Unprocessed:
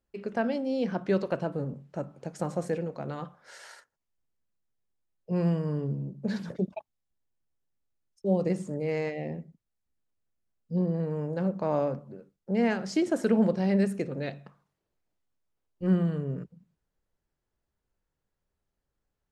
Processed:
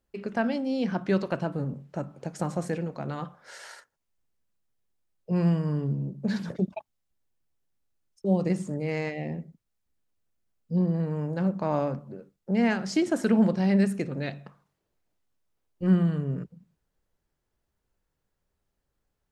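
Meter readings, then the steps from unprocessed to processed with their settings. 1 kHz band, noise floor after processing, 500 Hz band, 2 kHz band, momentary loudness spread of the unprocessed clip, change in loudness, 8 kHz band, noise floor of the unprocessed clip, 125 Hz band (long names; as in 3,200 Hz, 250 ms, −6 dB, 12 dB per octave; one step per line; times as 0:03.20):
+2.0 dB, −81 dBFS, −1.0 dB, +3.5 dB, 14 LU, +2.0 dB, +3.5 dB, −84 dBFS, +3.0 dB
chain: dynamic equaliser 490 Hz, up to −6 dB, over −42 dBFS, Q 1.7
level +3.5 dB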